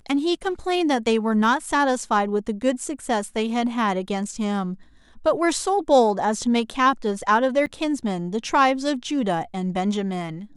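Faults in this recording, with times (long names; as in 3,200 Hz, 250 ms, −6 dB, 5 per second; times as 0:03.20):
0:07.66–0:07.67: drop-out 8 ms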